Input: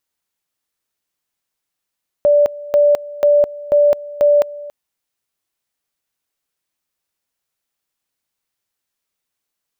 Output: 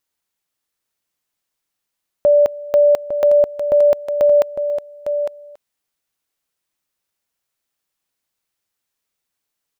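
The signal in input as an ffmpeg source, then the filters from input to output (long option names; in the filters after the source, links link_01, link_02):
-f lavfi -i "aevalsrc='pow(10,(-8-19.5*gte(mod(t,0.49),0.21))/20)*sin(2*PI*584*t)':duration=2.45:sample_rate=44100"
-af "aecho=1:1:855:0.376"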